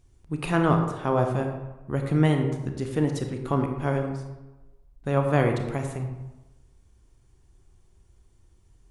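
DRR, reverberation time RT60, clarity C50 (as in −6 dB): 4.0 dB, 1.1 s, 5.5 dB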